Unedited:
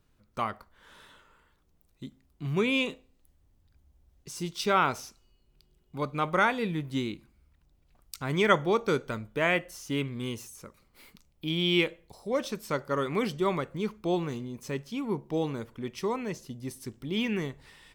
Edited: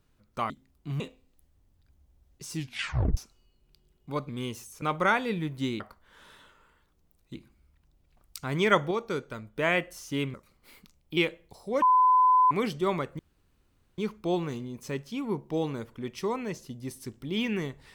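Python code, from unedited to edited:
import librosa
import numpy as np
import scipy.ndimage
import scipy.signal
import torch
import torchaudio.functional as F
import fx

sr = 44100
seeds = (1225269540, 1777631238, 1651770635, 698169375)

y = fx.edit(x, sr, fx.move(start_s=0.5, length_s=1.55, to_s=7.13),
    fx.cut(start_s=2.55, length_s=0.31),
    fx.tape_stop(start_s=4.38, length_s=0.65),
    fx.clip_gain(start_s=8.69, length_s=0.65, db=-5.0),
    fx.move(start_s=10.12, length_s=0.53, to_s=6.15),
    fx.cut(start_s=11.48, length_s=0.28),
    fx.bleep(start_s=12.41, length_s=0.69, hz=1010.0, db=-17.0),
    fx.insert_room_tone(at_s=13.78, length_s=0.79), tone=tone)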